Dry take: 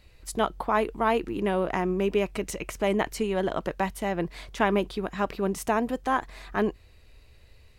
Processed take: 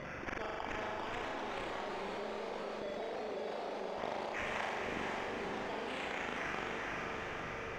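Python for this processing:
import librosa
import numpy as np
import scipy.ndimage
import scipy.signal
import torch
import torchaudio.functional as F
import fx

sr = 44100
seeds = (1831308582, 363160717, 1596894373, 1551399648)

p1 = fx.spec_dropout(x, sr, seeds[0], share_pct=36)
p2 = scipy.signal.sosfilt(scipy.signal.butter(2, 370.0, 'highpass', fs=sr, output='sos'), p1)
p3 = fx.high_shelf(p2, sr, hz=3700.0, db=-7.5)
p4 = fx.notch(p3, sr, hz=1000.0, q=12.0)
p5 = fx.rider(p4, sr, range_db=4, speed_s=2.0)
p6 = p4 + (p5 * librosa.db_to_amplitude(-1.0))
p7 = fx.gate_flip(p6, sr, shuts_db=-26.0, range_db=-29)
p8 = fx.sample_hold(p7, sr, seeds[1], rate_hz=4000.0, jitter_pct=0)
p9 = fx.air_absorb(p8, sr, metres=220.0)
p10 = fx.room_flutter(p9, sr, wall_m=7.2, rt60_s=1.1)
p11 = fx.echo_pitch(p10, sr, ms=458, semitones=2, count=3, db_per_echo=-3.0)
p12 = fx.echo_diffused(p11, sr, ms=465, feedback_pct=47, wet_db=-4)
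p13 = fx.env_flatten(p12, sr, amount_pct=70)
y = p13 * librosa.db_to_amplitude(-1.5)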